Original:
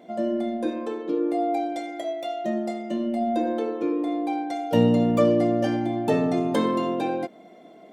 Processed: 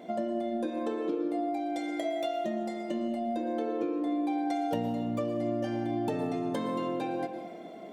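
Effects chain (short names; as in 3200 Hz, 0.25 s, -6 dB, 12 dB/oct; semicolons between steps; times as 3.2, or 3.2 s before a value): compressor 10:1, threshold -32 dBFS, peak gain reduction 18.5 dB; reverb RT60 1.4 s, pre-delay 0.105 s, DRR 7.5 dB; gain +2.5 dB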